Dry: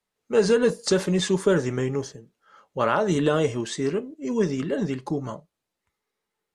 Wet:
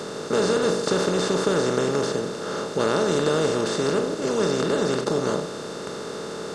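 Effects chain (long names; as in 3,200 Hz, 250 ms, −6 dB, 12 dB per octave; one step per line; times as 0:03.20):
compressor on every frequency bin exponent 0.2
level −8 dB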